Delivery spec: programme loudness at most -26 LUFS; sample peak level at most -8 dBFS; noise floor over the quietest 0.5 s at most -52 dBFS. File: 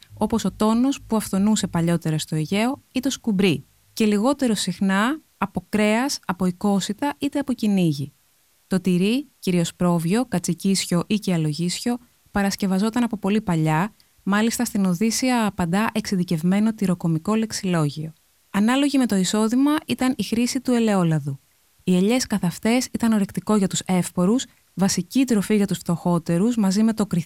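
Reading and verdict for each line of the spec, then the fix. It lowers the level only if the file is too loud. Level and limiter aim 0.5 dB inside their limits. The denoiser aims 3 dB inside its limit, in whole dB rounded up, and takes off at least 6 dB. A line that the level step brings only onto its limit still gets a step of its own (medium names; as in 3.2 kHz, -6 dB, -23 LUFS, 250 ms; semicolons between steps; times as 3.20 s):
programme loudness -22.0 LUFS: fail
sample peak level -5.5 dBFS: fail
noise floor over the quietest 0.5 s -61 dBFS: pass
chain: trim -4.5 dB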